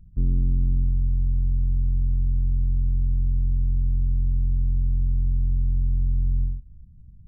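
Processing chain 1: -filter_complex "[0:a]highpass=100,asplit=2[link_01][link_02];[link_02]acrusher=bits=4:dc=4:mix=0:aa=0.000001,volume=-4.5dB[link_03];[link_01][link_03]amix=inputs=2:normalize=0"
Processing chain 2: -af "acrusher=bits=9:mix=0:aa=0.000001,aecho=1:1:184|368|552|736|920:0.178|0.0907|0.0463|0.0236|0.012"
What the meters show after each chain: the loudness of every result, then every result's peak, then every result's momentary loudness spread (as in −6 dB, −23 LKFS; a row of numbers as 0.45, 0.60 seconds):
−31.0, −24.0 LKFS; −18.0, −12.5 dBFS; 2, 1 LU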